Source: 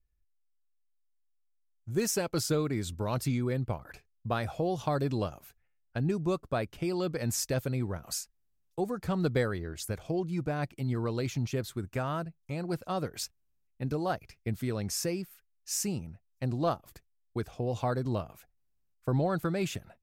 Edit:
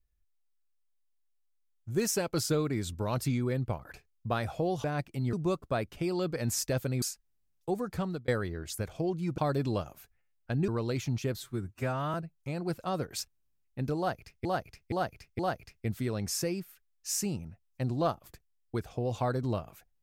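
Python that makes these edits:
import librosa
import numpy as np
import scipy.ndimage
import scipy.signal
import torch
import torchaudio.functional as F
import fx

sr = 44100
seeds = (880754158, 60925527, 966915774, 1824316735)

y = fx.edit(x, sr, fx.swap(start_s=4.84, length_s=1.3, other_s=10.48, other_length_s=0.49),
    fx.cut(start_s=7.83, length_s=0.29),
    fx.fade_out_span(start_s=9.05, length_s=0.33),
    fx.stretch_span(start_s=11.65, length_s=0.52, factor=1.5),
    fx.repeat(start_s=14.01, length_s=0.47, count=4), tone=tone)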